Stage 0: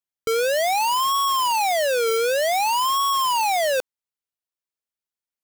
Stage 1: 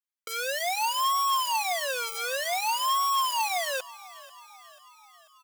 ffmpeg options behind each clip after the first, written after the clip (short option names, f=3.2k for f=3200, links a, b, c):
-filter_complex "[0:a]highpass=900,aecho=1:1:5.6:0.59,asplit=6[a][b][c][d][e][f];[b]adelay=490,afreqshift=39,volume=-20dB[g];[c]adelay=980,afreqshift=78,volume=-24.4dB[h];[d]adelay=1470,afreqshift=117,volume=-28.9dB[i];[e]adelay=1960,afreqshift=156,volume=-33.3dB[j];[f]adelay=2450,afreqshift=195,volume=-37.7dB[k];[a][g][h][i][j][k]amix=inputs=6:normalize=0,volume=-5.5dB"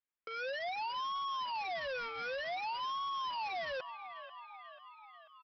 -af "lowpass=f=2.9k:w=0.5412,lowpass=f=2.9k:w=1.3066,aresample=11025,asoftclip=type=tanh:threshold=-36.5dB,aresample=44100"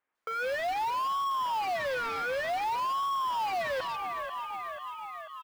-filter_complex "[0:a]acrossover=split=2700[a][b];[b]adelay=150[c];[a][c]amix=inputs=2:normalize=0,asplit=2[d][e];[e]highpass=f=720:p=1,volume=18dB,asoftclip=type=tanh:threshold=-31.5dB[f];[d][f]amix=inputs=2:normalize=0,lowpass=f=1.5k:p=1,volume=-6dB,acrusher=bits=6:mode=log:mix=0:aa=0.000001,volume=7dB"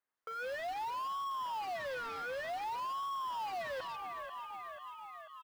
-af "bandreject=f=2.3k:w=14,volume=-8dB"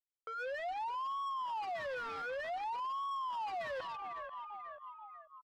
-af "anlmdn=0.0398"